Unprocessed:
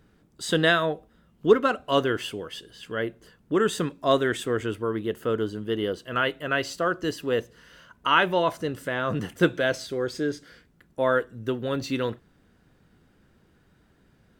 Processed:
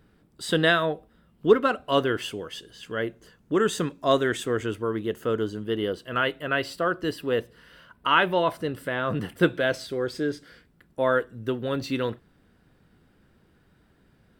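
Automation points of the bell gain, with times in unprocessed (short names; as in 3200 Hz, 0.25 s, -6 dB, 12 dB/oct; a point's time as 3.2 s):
bell 6500 Hz 0.32 oct
-7 dB
from 2.22 s +2.5 dB
from 5.63 s -6 dB
from 6.45 s -13 dB
from 9.7 s -6 dB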